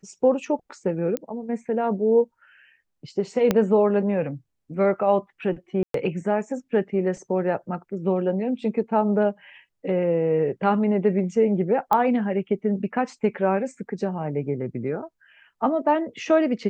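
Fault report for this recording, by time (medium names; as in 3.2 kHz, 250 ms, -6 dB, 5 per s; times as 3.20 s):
1.17 s: pop -13 dBFS
3.51 s: pop -7 dBFS
5.83–5.94 s: dropout 113 ms
11.93 s: pop -10 dBFS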